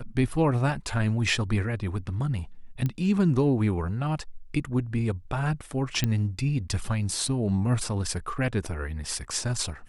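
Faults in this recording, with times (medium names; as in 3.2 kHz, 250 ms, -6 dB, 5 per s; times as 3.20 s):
2.86 s: pop -17 dBFS
6.04 s: pop -11 dBFS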